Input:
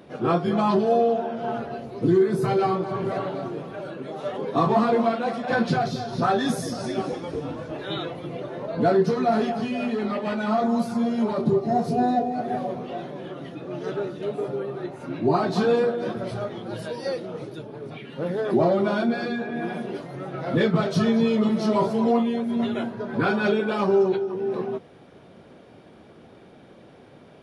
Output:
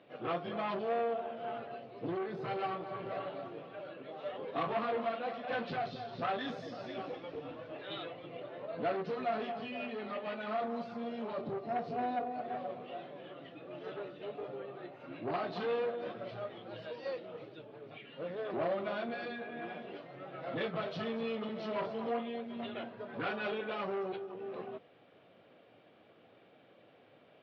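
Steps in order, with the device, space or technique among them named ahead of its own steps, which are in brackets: guitar amplifier (valve stage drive 18 dB, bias 0.45; tone controls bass -12 dB, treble -5 dB; cabinet simulation 93–4200 Hz, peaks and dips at 110 Hz +6 dB, 220 Hz -3 dB, 380 Hz -6 dB, 920 Hz -6 dB, 1.5 kHz -3 dB, 2.8 kHz +4 dB); trim -6.5 dB

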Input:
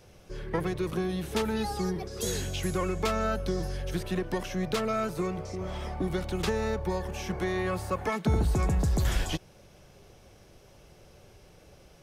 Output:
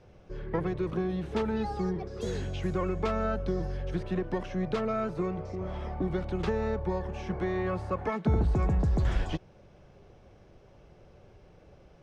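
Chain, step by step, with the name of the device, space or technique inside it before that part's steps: through cloth (low-pass 6.6 kHz 12 dB/octave; treble shelf 2.9 kHz -14.5 dB)

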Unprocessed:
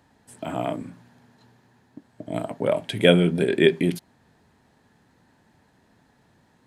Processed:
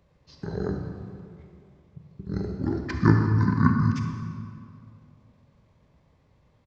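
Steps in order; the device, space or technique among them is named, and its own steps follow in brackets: monster voice (pitch shift -8 st; formant shift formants -3 st; bass shelf 130 Hz +4.5 dB; reverberation RT60 2.3 s, pre-delay 28 ms, DRR 3.5 dB); trim -4 dB

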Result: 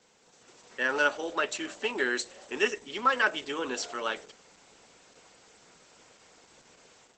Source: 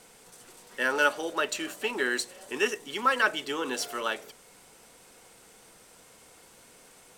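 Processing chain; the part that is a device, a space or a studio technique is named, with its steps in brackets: steep low-pass 10 kHz 36 dB/octave; 2.72–3.25 s: gate with hold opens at -44 dBFS; video call (high-pass 130 Hz 6 dB/octave; level rider gain up to 7 dB; trim -6.5 dB; Opus 12 kbps 48 kHz)

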